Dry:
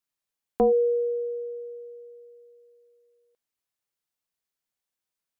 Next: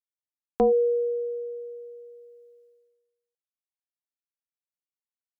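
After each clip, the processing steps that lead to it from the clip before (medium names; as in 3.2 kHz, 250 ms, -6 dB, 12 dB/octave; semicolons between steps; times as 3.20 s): expander -55 dBFS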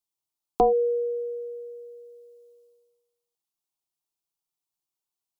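static phaser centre 350 Hz, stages 8; trim +8 dB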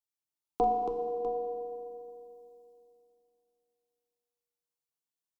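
multi-tap echo 41/277/649 ms -9/-6.5/-12.5 dB; FDN reverb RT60 2.6 s, low-frequency decay 1.2×, high-frequency decay 0.8×, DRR 3.5 dB; trim -8.5 dB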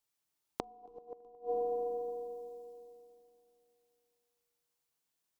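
compression 2:1, threshold -40 dBFS, peak gain reduction 9.5 dB; inverted gate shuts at -32 dBFS, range -27 dB; trim +7.5 dB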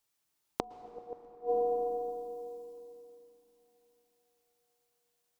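plate-style reverb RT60 4.4 s, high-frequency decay 0.45×, pre-delay 100 ms, DRR 16 dB; trim +4.5 dB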